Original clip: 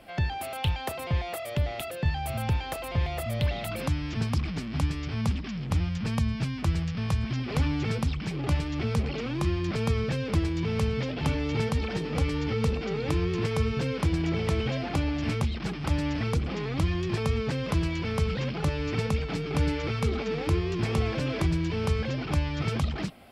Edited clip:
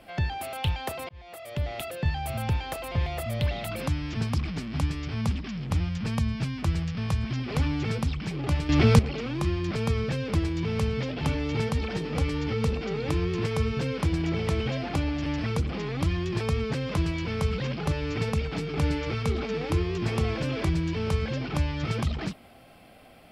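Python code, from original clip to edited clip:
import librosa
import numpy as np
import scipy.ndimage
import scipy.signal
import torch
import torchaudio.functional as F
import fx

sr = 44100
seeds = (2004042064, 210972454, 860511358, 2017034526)

y = fx.edit(x, sr, fx.fade_in_span(start_s=1.09, length_s=0.69),
    fx.clip_gain(start_s=8.69, length_s=0.3, db=10.0),
    fx.cut(start_s=15.26, length_s=0.77), tone=tone)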